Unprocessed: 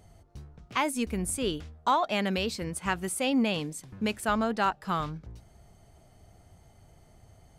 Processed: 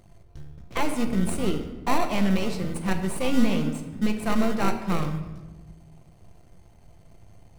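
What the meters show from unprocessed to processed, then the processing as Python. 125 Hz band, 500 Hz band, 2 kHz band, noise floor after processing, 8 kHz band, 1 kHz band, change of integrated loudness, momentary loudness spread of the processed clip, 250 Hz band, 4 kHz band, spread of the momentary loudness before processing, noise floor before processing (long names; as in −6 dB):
+7.5 dB, +2.0 dB, 0.0 dB, −53 dBFS, −2.5 dB, −1.5 dB, +2.5 dB, 10 LU, +6.0 dB, −2.0 dB, 7 LU, −58 dBFS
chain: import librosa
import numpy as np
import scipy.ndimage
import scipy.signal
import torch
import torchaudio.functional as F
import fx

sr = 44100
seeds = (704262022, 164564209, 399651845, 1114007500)

p1 = np.where(x < 0.0, 10.0 ** (-12.0 / 20.0) * x, x)
p2 = fx.dynamic_eq(p1, sr, hz=190.0, q=1.1, threshold_db=-47.0, ratio=4.0, max_db=6)
p3 = fx.sample_hold(p2, sr, seeds[0], rate_hz=1700.0, jitter_pct=0)
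p4 = p2 + (p3 * 10.0 ** (-3.0 / 20.0))
p5 = fx.room_shoebox(p4, sr, seeds[1], volume_m3=700.0, walls='mixed', distance_m=0.81)
y = fx.doppler_dist(p5, sr, depth_ms=0.13)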